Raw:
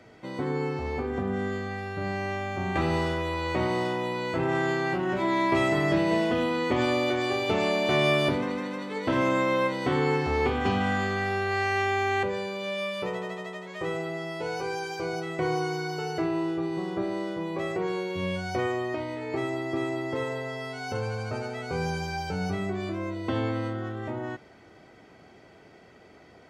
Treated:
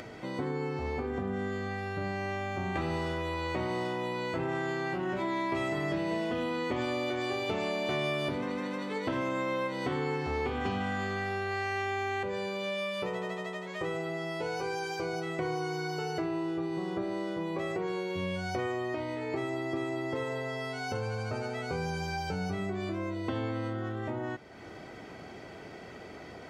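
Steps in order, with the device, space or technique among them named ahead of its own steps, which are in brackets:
upward and downward compression (upward compression, threshold −37 dBFS; downward compressor 3 to 1, threshold −31 dBFS, peak gain reduction 9 dB)

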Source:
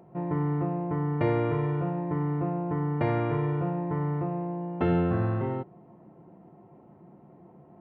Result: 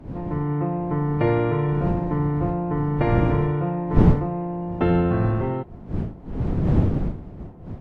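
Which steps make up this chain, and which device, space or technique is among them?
smartphone video outdoors (wind on the microphone 180 Hz −30 dBFS; automatic gain control gain up to 5 dB; AAC 64 kbit/s 32,000 Hz)

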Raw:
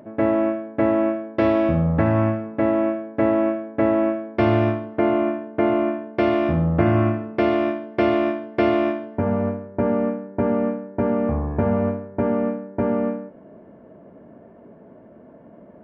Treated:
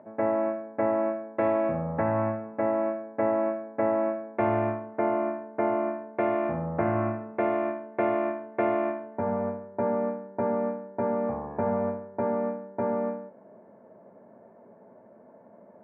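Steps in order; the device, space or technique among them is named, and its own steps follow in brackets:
high-pass filter 110 Hz 24 dB per octave
bass cabinet (loudspeaker in its box 71–2,300 Hz, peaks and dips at 150 Hz −9 dB, 300 Hz −8 dB, 550 Hz +3 dB, 870 Hz +7 dB)
notch filter 3,000 Hz, Q 7.7
level −6.5 dB

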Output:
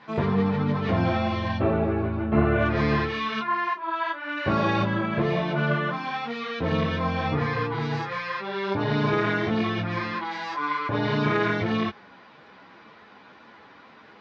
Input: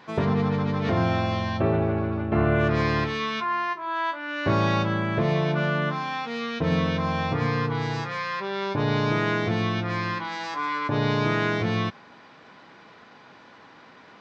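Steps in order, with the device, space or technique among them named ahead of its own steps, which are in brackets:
string-machine ensemble chorus (string-ensemble chorus; low-pass filter 4,700 Hz 12 dB per octave)
level +3 dB

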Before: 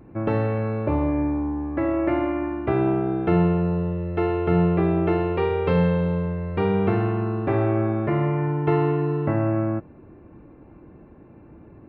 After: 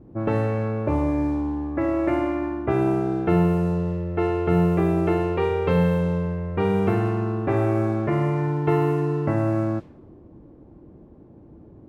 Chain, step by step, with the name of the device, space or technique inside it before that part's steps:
cassette deck with a dynamic noise filter (white noise bed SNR 33 dB; low-pass that shuts in the quiet parts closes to 610 Hz, open at −16 dBFS)

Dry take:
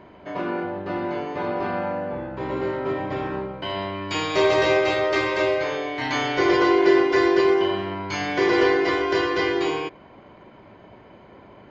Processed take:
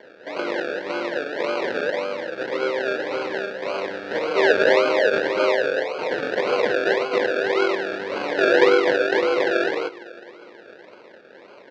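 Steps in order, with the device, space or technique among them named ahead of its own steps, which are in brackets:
0:05.84–0:07.56: Butterworth high-pass 430 Hz 48 dB per octave
bucket-brigade delay 205 ms, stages 1,024, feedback 71%, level −17 dB
circuit-bent sampling toy (sample-and-hold swept by an LFO 34×, swing 60% 1.8 Hz; loudspeaker in its box 420–4,200 Hz, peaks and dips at 500 Hz +8 dB, 750 Hz −6 dB, 1,100 Hz −5 dB, 1,600 Hz +7 dB, 3,100 Hz −4 dB)
level +3 dB

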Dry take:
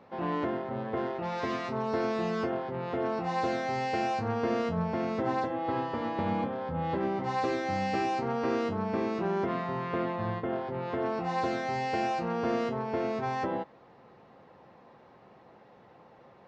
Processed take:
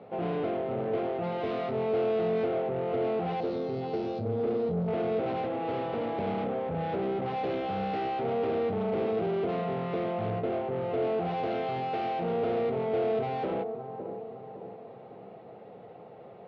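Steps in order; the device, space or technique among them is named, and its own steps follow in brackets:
0:03.40–0:04.88: flat-topped bell 1,300 Hz −14 dB 2.4 octaves
analogue delay pedal into a guitar amplifier (bucket-brigade delay 559 ms, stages 4,096, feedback 47%, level −14 dB; tube saturation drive 36 dB, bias 0.35; loudspeaker in its box 84–3,700 Hz, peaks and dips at 110 Hz +5 dB, 180 Hz +5 dB, 440 Hz +10 dB, 690 Hz +8 dB, 1,000 Hz −7 dB, 1,700 Hz −7 dB)
level +4 dB

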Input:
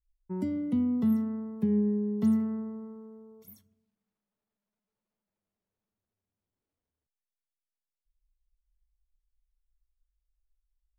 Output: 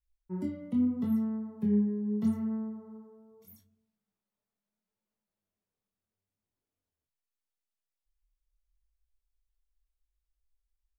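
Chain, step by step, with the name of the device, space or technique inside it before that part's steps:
double-tracked vocal (double-tracking delay 33 ms −12 dB; chorus effect 0.77 Hz, delay 18 ms, depth 7.8 ms)

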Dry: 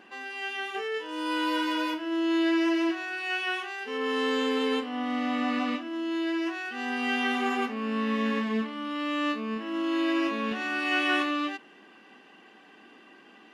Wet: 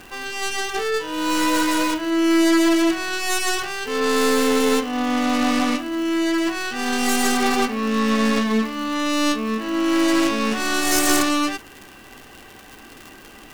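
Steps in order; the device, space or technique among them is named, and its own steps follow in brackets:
record under a worn stylus (stylus tracing distortion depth 0.39 ms; surface crackle 130 per second −37 dBFS; pink noise bed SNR 29 dB)
level +8.5 dB

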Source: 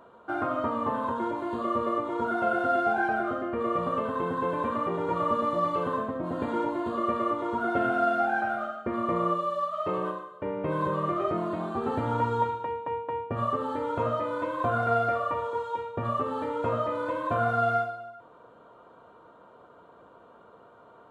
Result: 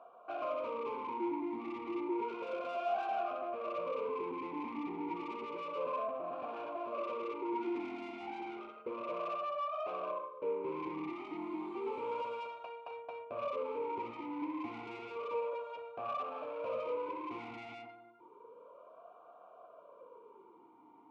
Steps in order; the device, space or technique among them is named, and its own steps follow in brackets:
0:11.10–0:12.91: spectral tilt +3 dB per octave
talk box (tube saturation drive 33 dB, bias 0.4; formant filter swept between two vowels a-u 0.31 Hz)
level +7 dB

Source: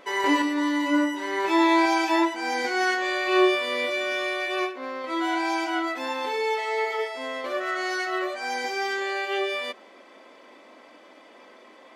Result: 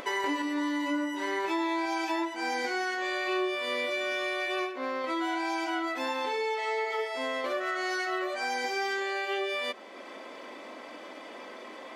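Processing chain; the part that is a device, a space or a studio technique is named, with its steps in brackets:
upward and downward compression (upward compression, threshold −40 dBFS; downward compressor 5 to 1, threshold −31 dBFS, peak gain reduction 14 dB)
0:06.23–0:06.93: low-pass filter 9,800 Hz 12 dB per octave
level +2.5 dB

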